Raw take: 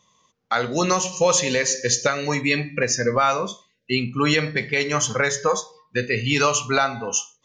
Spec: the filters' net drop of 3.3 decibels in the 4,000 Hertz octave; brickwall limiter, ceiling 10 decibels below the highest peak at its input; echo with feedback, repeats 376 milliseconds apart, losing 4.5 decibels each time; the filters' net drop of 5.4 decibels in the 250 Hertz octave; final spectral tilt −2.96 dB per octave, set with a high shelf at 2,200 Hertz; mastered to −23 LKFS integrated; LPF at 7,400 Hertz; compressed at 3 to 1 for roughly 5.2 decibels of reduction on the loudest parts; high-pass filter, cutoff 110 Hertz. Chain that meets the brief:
high-pass filter 110 Hz
low-pass filter 7,400 Hz
parametric band 250 Hz −7 dB
high-shelf EQ 2,200 Hz +3 dB
parametric band 4,000 Hz −7 dB
downward compressor 3 to 1, threshold −22 dBFS
brickwall limiter −19.5 dBFS
repeating echo 376 ms, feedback 60%, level −4.5 dB
level +5.5 dB

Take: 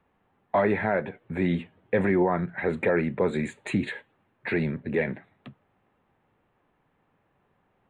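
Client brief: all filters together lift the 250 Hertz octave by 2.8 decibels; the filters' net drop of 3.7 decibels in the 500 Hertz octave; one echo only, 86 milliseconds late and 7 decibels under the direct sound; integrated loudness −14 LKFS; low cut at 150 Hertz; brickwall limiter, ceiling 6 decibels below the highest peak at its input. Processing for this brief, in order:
high-pass filter 150 Hz
parametric band 250 Hz +7 dB
parametric band 500 Hz −7.5 dB
brickwall limiter −17.5 dBFS
single-tap delay 86 ms −7 dB
level +14.5 dB

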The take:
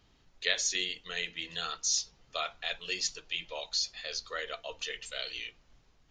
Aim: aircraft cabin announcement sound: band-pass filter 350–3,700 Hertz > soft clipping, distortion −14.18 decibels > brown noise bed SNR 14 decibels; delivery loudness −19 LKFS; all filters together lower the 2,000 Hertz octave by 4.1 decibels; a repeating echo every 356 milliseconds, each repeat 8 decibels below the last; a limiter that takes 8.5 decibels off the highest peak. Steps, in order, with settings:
parametric band 2,000 Hz −4.5 dB
brickwall limiter −23.5 dBFS
band-pass filter 350–3,700 Hz
repeating echo 356 ms, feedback 40%, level −8 dB
soft clipping −33 dBFS
brown noise bed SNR 14 dB
level +22.5 dB

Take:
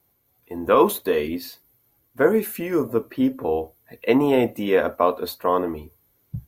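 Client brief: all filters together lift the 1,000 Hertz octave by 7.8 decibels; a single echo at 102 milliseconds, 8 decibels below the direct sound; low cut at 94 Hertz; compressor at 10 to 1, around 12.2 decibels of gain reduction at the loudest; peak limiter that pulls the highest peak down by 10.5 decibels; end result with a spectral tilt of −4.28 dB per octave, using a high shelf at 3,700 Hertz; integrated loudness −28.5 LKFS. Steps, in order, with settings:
high-pass filter 94 Hz
parametric band 1,000 Hz +8.5 dB
high-shelf EQ 3,700 Hz +5 dB
downward compressor 10 to 1, threshold −19 dBFS
brickwall limiter −16.5 dBFS
single-tap delay 102 ms −8 dB
level −0.5 dB

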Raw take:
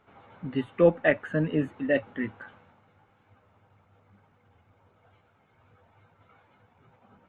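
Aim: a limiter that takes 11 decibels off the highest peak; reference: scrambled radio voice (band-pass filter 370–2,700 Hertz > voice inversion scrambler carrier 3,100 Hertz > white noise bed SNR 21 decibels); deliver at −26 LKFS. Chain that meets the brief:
brickwall limiter −18.5 dBFS
band-pass filter 370–2,700 Hz
voice inversion scrambler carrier 3,100 Hz
white noise bed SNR 21 dB
level +5.5 dB

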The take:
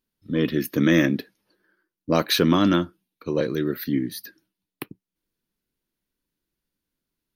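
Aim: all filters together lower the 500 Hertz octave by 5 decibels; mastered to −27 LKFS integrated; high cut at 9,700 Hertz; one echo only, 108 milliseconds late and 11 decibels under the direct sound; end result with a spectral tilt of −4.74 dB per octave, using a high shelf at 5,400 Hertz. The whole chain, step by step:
low-pass filter 9,700 Hz
parametric band 500 Hz −7 dB
high-shelf EQ 5,400 Hz +7 dB
single-tap delay 108 ms −11 dB
level −3 dB

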